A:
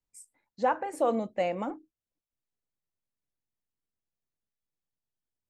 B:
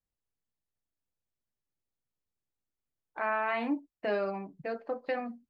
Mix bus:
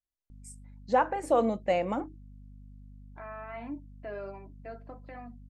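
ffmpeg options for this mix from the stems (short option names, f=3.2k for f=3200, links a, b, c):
-filter_complex "[0:a]lowpass=10k,aeval=exprs='val(0)+0.00316*(sin(2*PI*50*n/s)+sin(2*PI*2*50*n/s)/2+sin(2*PI*3*50*n/s)/3+sin(2*PI*4*50*n/s)/4+sin(2*PI*5*50*n/s)/5)':c=same,adelay=300,volume=2dB[a];[1:a]acrossover=split=2500[b][c];[c]acompressor=threshold=-57dB:ratio=4:attack=1:release=60[d];[b][d]amix=inputs=2:normalize=0,alimiter=level_in=1.5dB:limit=-24dB:level=0:latency=1:release=34,volume=-1.5dB,aecho=1:1:3:0.53,volume=-8.5dB[e];[a][e]amix=inputs=2:normalize=0"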